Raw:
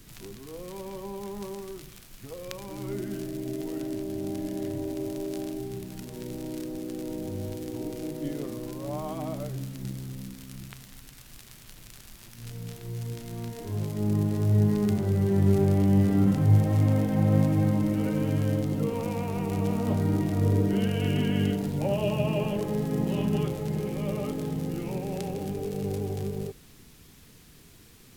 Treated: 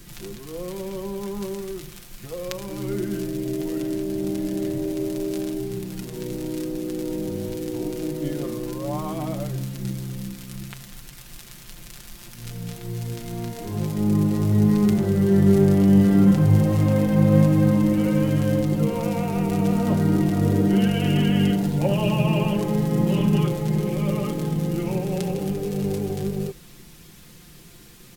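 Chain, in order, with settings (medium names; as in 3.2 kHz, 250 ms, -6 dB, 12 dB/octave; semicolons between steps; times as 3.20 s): comb 5.7 ms, depth 55%; trim +5 dB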